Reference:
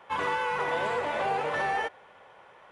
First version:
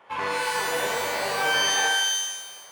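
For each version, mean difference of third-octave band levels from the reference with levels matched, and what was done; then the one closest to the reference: 9.5 dB: rattle on loud lows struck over -52 dBFS, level -29 dBFS; bass shelf 60 Hz -8.5 dB; on a send: band-passed feedback delay 78 ms, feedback 40%, band-pass 880 Hz, level -4 dB; on the sum: pitch-shifted reverb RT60 1 s, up +12 st, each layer -2 dB, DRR 3 dB; trim -1.5 dB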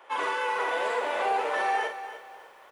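5.5 dB: high-pass 300 Hz 24 dB/octave; treble shelf 8.5 kHz +6.5 dB; doubling 46 ms -7 dB; bit-crushed delay 295 ms, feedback 35%, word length 9-bit, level -12 dB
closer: second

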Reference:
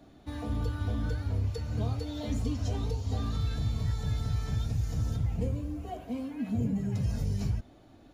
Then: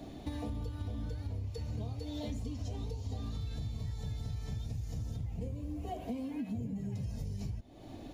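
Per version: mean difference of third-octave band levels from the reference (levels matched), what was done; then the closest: 3.0 dB: peaking EQ 1.4 kHz -10 dB 0.52 oct; compression 8:1, threshold -45 dBFS, peak gain reduction 19 dB; trim +9 dB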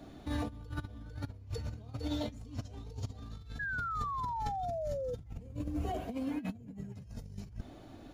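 8.5 dB: compressor with a negative ratio -37 dBFS, ratio -0.5; painted sound fall, 3.59–5.15 s, 480–1700 Hz -34 dBFS; trim -2.5 dB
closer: first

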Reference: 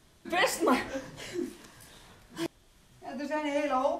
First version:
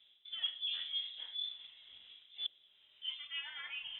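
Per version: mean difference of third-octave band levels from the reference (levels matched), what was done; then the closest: 17.5 dB: reverse; compression 6:1, threshold -38 dBFS, peak gain reduction 16.5 dB; reverse; band-pass sweep 470 Hz -> 1.7 kHz, 2.63–3.62 s; frequency inversion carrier 3.8 kHz; de-hum 47.1 Hz, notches 17; trim +7 dB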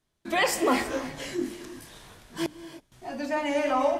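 2.5 dB: hum notches 60/120/180/240/300 Hz; gate with hold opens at -49 dBFS; in parallel at 0 dB: peak limiter -22.5 dBFS, peak gain reduction 10 dB; on the sum: gated-style reverb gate 350 ms rising, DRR 11.5 dB; trim -1.5 dB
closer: second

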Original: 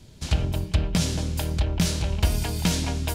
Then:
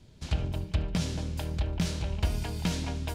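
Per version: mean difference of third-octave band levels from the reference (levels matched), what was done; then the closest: 1.5 dB: treble shelf 6.4 kHz -9.5 dB; thinning echo 73 ms, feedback 63%, level -20 dB; trim -6 dB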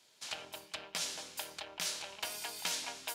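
9.5 dB: high-pass 820 Hz 12 dB/octave; trim -7 dB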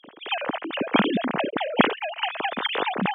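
19.0 dB: formants replaced by sine waves; Bessel high-pass 230 Hz, order 2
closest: first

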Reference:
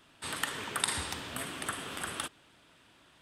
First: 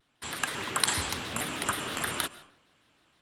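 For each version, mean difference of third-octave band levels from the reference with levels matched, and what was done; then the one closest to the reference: 4.5 dB: gate -56 dBFS, range -11 dB; level rider gain up to 6 dB; algorithmic reverb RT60 0.68 s, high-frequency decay 0.65×, pre-delay 95 ms, DRR 19 dB; vibrato with a chosen wave square 6.4 Hz, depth 160 cents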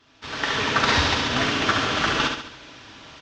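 8.0 dB: CVSD coder 32 kbps; comb of notches 180 Hz; feedback delay 69 ms, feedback 47%, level -5 dB; level rider gain up to 14 dB; trim +3 dB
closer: first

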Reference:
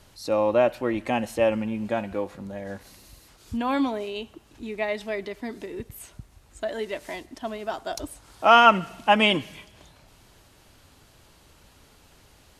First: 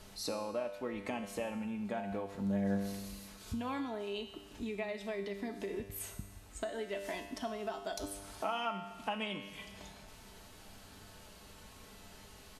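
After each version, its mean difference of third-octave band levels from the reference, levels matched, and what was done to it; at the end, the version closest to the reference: 8.0 dB: comb 4.6 ms, depth 40%; compression 6:1, threshold -36 dBFS, peak gain reduction 24.5 dB; feedback comb 99 Hz, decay 1.1 s, harmonics all, mix 80%; trim +11.5 dB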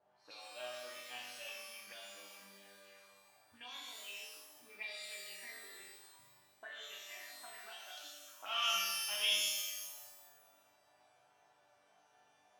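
14.0 dB: chord resonator G2 major, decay 0.81 s; auto-wah 670–3700 Hz, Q 3.6, up, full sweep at -45.5 dBFS; pitch-shifted reverb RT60 1.1 s, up +12 st, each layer -2 dB, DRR 1 dB; trim +12 dB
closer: first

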